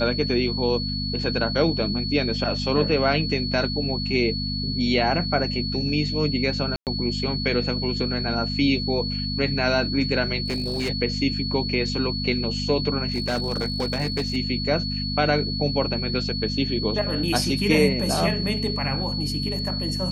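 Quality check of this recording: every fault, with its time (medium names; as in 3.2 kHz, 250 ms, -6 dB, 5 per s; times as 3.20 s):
hum 50 Hz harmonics 5 -29 dBFS
whine 4.4 kHz -29 dBFS
6.76–6.87 s: dropout 108 ms
10.46–10.90 s: clipped -22 dBFS
13.12–14.37 s: clipped -20 dBFS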